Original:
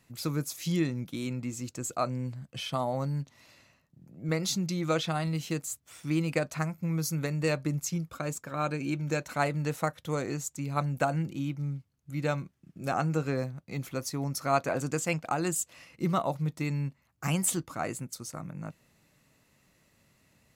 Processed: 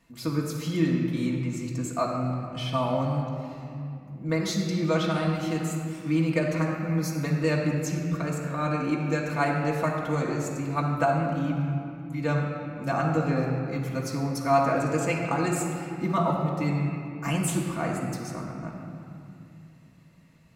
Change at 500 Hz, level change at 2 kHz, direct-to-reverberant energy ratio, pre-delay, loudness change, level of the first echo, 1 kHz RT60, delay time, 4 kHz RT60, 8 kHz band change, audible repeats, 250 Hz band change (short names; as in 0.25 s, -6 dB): +5.0 dB, +4.0 dB, -3.5 dB, 3 ms, +4.5 dB, none, 2.5 s, none, 1.6 s, -3.0 dB, none, +5.5 dB